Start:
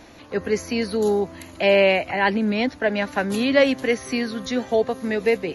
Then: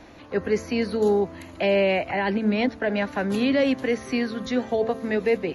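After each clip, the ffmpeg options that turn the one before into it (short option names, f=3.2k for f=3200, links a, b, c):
-filter_complex "[0:a]acrossover=split=390|4100[a][b][c];[b]alimiter=limit=-17dB:level=0:latency=1:release=31[d];[a][d][c]amix=inputs=3:normalize=0,highshelf=f=4.9k:g=-11,bandreject=f=223.3:t=h:w=4,bandreject=f=446.6:t=h:w=4,bandreject=f=669.9:t=h:w=4,bandreject=f=893.2:t=h:w=4,bandreject=f=1.1165k:t=h:w=4,bandreject=f=1.3398k:t=h:w=4,bandreject=f=1.5631k:t=h:w=4"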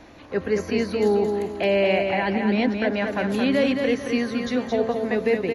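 -af "aecho=1:1:221|442|663|884:0.562|0.186|0.0612|0.0202"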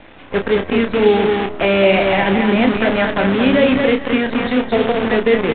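-filter_complex "[0:a]acrossover=split=1400[a][b];[a]acrusher=bits=5:dc=4:mix=0:aa=0.000001[c];[c][b]amix=inputs=2:normalize=0,asplit=2[d][e];[e]adelay=31,volume=-7dB[f];[d][f]amix=inputs=2:normalize=0,aresample=8000,aresample=44100,volume=6.5dB"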